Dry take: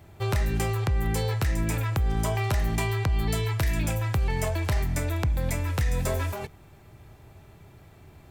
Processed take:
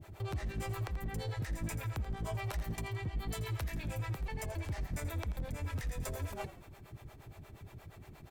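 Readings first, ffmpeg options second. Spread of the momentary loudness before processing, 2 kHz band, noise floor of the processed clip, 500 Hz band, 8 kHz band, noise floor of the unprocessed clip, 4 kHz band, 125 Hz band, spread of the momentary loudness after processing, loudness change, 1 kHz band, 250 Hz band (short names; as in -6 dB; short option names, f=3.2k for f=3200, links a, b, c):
2 LU, -11.5 dB, -56 dBFS, -12.5 dB, -12.0 dB, -52 dBFS, -11.5 dB, -12.0 dB, 14 LU, -12.0 dB, -11.5 dB, -12.0 dB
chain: -filter_complex "[0:a]alimiter=level_in=5dB:limit=-24dB:level=0:latency=1:release=138,volume=-5dB,acrossover=split=400[a][b];[a]aeval=exprs='val(0)*(1-1/2+1/2*cos(2*PI*8.5*n/s))':c=same[c];[b]aeval=exprs='val(0)*(1-1/2-1/2*cos(2*PI*8.5*n/s))':c=same[d];[c][d]amix=inputs=2:normalize=0,volume=35dB,asoftclip=hard,volume=-35dB,asplit=4[e][f][g][h];[f]adelay=84,afreqshift=-52,volume=-14dB[i];[g]adelay=168,afreqshift=-104,volume=-22.9dB[j];[h]adelay=252,afreqshift=-156,volume=-31.7dB[k];[e][i][j][k]amix=inputs=4:normalize=0,volume=3dB"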